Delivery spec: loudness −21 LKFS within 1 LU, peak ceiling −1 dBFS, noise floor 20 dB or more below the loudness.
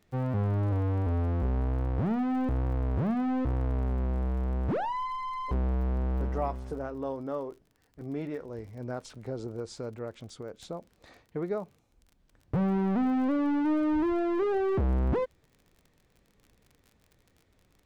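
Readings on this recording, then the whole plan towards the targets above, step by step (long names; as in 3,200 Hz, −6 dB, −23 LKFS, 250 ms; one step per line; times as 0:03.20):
crackle rate 35 per second; integrated loudness −30.5 LKFS; sample peak −19.0 dBFS; target loudness −21.0 LKFS
→ click removal
level +9.5 dB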